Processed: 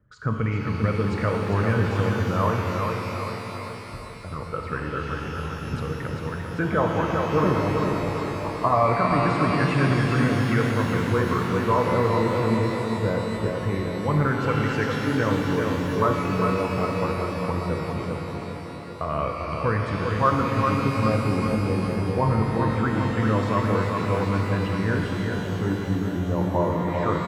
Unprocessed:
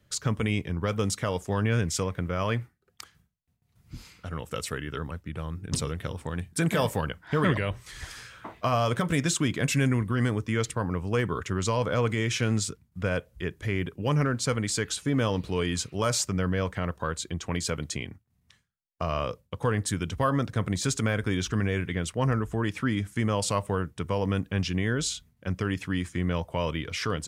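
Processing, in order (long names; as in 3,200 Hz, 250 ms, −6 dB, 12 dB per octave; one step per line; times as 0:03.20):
spectral envelope exaggerated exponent 1.5
auto-filter low-pass sine 0.22 Hz 840–1,900 Hz
repeating echo 397 ms, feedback 54%, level −5 dB
reverb with rising layers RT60 3.6 s, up +12 semitones, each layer −8 dB, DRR 1.5 dB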